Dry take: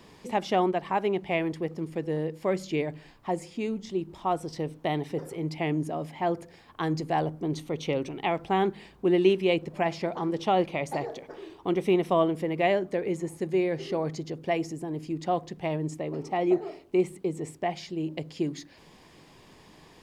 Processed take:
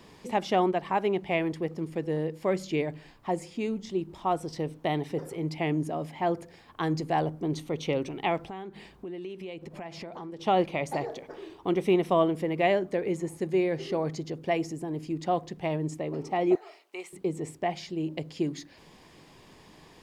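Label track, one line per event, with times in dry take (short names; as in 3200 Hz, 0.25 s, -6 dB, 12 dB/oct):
8.420000	10.460000	compressor, threshold -37 dBFS
16.550000	17.130000	HPF 1000 Hz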